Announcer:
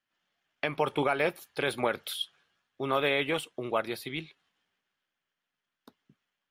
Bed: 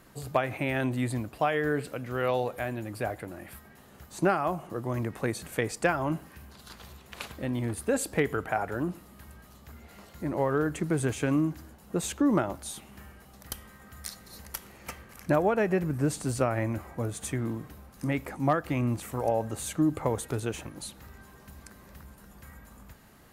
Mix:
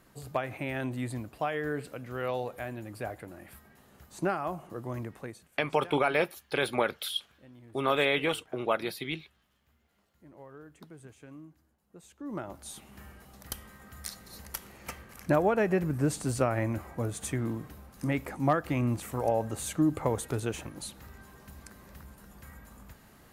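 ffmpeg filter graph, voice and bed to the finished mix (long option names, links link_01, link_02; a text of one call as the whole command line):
ffmpeg -i stem1.wav -i stem2.wav -filter_complex "[0:a]adelay=4950,volume=1dB[link_01];[1:a]volume=17dB,afade=type=out:start_time=4.93:duration=0.55:silence=0.133352,afade=type=in:start_time=12.17:duration=0.93:silence=0.0794328[link_02];[link_01][link_02]amix=inputs=2:normalize=0" out.wav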